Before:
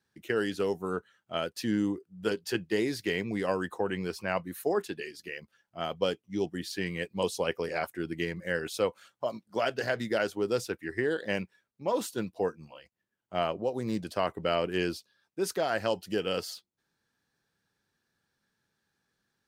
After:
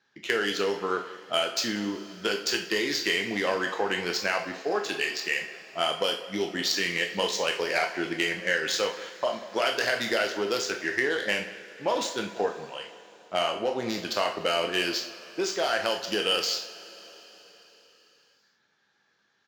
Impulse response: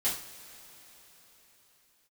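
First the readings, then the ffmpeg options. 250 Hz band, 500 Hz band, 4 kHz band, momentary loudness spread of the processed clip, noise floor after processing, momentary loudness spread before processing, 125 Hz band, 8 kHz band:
-1.0 dB, +1.5 dB, +11.5 dB, 6 LU, -70 dBFS, 8 LU, -5.0 dB, +9.5 dB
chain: -filter_complex "[0:a]crystalizer=i=5:c=0,acompressor=threshold=-29dB:ratio=5,asoftclip=type=tanh:threshold=-20dB,highpass=f=450:p=1,aecho=1:1:188:0.158,aresample=16000,aresample=44100,adynamicsmooth=sensitivity=6.5:basefreq=2.5k,asplit=2[a][b];[1:a]atrim=start_sample=2205,lowshelf=f=270:g=-10,adelay=15[c];[b][c]afir=irnorm=-1:irlink=0,volume=-9dB[d];[a][d]amix=inputs=2:normalize=0,volume=8.5dB"

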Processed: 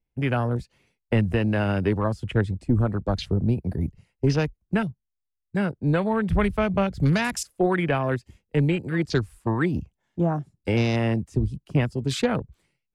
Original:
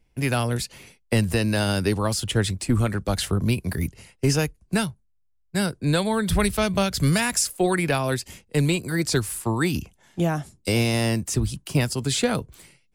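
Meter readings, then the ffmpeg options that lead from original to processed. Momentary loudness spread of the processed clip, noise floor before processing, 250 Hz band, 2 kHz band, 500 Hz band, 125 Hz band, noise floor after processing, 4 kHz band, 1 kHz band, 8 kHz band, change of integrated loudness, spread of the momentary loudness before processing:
6 LU, -65 dBFS, 0.0 dB, -2.5 dB, 0.0 dB, 0.0 dB, -82 dBFS, -8.5 dB, -0.5 dB, -13.0 dB, -1.0 dB, 6 LU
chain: -af "afwtdn=0.0282,aemphasis=mode=reproduction:type=50kf"

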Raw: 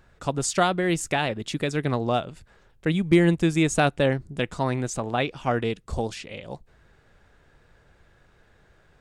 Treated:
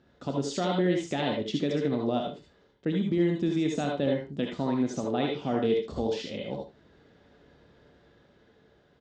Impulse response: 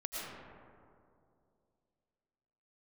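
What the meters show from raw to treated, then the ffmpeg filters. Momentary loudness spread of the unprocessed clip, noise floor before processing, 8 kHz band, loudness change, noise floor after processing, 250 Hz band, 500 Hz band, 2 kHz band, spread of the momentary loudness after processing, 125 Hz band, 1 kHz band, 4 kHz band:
11 LU, -60 dBFS, -13.0 dB, -4.5 dB, -63 dBFS, -2.5 dB, -2.5 dB, -10.5 dB, 9 LU, -7.0 dB, -7.5 dB, -4.5 dB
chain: -filter_complex "[0:a]lowshelf=f=410:g=10.5,bandreject=f=1.1k:w=17,dynaudnorm=f=400:g=7:m=5dB,alimiter=limit=-10.5dB:level=0:latency=1:release=138,highpass=200,equalizer=f=260:t=q:w=4:g=5,equalizer=f=940:t=q:w=4:g=-5,equalizer=f=1.5k:t=q:w=4:g=-5,equalizer=f=2.3k:t=q:w=4:g=-6,equalizer=f=3.5k:t=q:w=4:g=3,lowpass=f=5.7k:w=0.5412,lowpass=f=5.7k:w=1.3066,asplit=2[a][b];[b]adelay=28,volume=-12.5dB[c];[a][c]amix=inputs=2:normalize=0,aecho=1:1:57|75:0.178|0.15[d];[1:a]atrim=start_sample=2205,atrim=end_sample=6174,asetrate=70560,aresample=44100[e];[d][e]afir=irnorm=-1:irlink=0,volume=2dB"

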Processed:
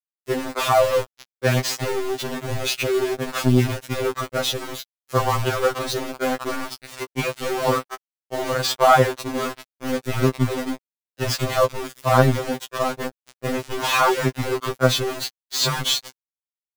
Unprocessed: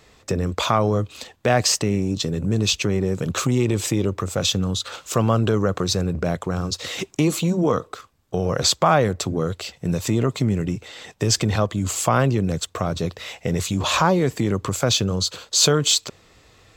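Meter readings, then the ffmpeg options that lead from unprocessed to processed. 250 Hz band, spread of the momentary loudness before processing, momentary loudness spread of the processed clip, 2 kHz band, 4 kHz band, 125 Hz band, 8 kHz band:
-4.0 dB, 9 LU, 12 LU, +3.0 dB, -2.5 dB, -3.5 dB, -6.5 dB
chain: -filter_complex "[0:a]asplit=2[a][b];[b]highpass=f=720:p=1,volume=8dB,asoftclip=type=tanh:threshold=-2.5dB[c];[a][c]amix=inputs=2:normalize=0,lowpass=f=1.8k:p=1,volume=-6dB,adynamicsmooth=sensitivity=6:basefreq=4.7k,aeval=exprs='val(0)*gte(abs(val(0)),0.0668)':c=same,acontrast=22,afftfilt=real='re*2.45*eq(mod(b,6),0)':imag='im*2.45*eq(mod(b,6),0)':win_size=2048:overlap=0.75"

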